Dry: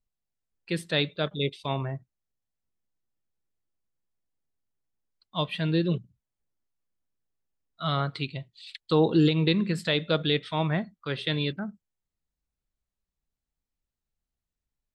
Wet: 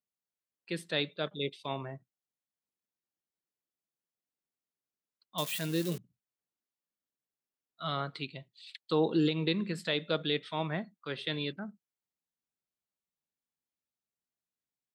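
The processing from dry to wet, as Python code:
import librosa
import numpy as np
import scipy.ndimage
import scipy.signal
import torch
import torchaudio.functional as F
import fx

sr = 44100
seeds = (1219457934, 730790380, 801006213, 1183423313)

y = fx.crossing_spikes(x, sr, level_db=-23.0, at=(5.38, 5.98))
y = scipy.signal.sosfilt(scipy.signal.butter(2, 180.0, 'highpass', fs=sr, output='sos'), y)
y = y * 10.0 ** (-5.5 / 20.0)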